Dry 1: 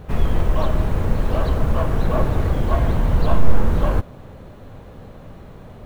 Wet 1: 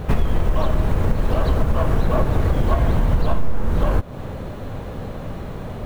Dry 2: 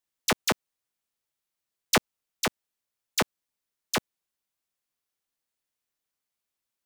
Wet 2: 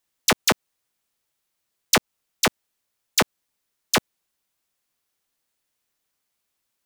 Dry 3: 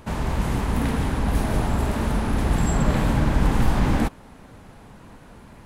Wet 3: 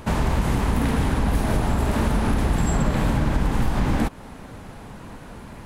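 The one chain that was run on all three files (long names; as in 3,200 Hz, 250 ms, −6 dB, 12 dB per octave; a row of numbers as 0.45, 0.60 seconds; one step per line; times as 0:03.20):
downward compressor 6 to 1, threshold −23 dBFS
loudness normalisation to −23 LKFS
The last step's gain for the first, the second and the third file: +9.5, +8.5, +6.0 decibels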